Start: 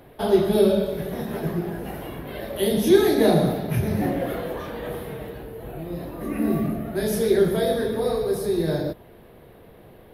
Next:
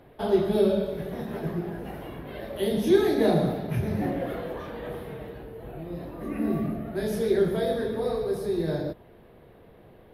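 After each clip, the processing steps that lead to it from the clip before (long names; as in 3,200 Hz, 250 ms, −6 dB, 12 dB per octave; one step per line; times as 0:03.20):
high-shelf EQ 5,900 Hz −9 dB
level −4 dB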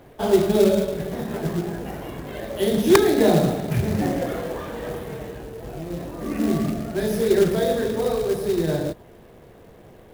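wrap-around overflow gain 10 dB
floating-point word with a short mantissa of 2 bits
level +5 dB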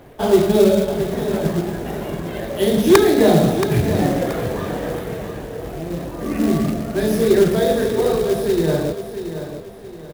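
in parallel at −7.5 dB: hard clipping −12.5 dBFS, distortion −15 dB
on the sum: repeating echo 677 ms, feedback 35%, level −10 dB
level +1 dB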